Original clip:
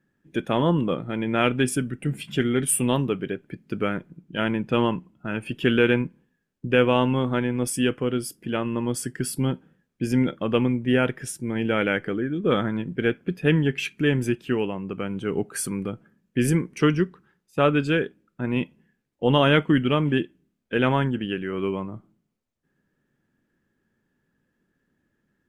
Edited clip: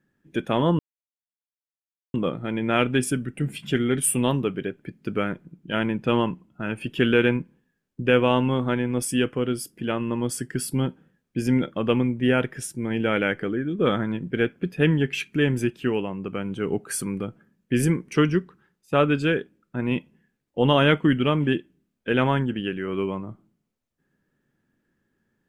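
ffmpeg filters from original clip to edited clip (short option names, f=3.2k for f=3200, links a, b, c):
-filter_complex "[0:a]asplit=2[a][b];[a]atrim=end=0.79,asetpts=PTS-STARTPTS,afade=t=out:st=0.786:d=0.004:c=hsin,apad=pad_dur=1.35[c];[b]atrim=start=0.79,asetpts=PTS-STARTPTS,afade=t=in:d=0.004:c=hsin[d];[c][d]concat=n=2:v=0:a=1"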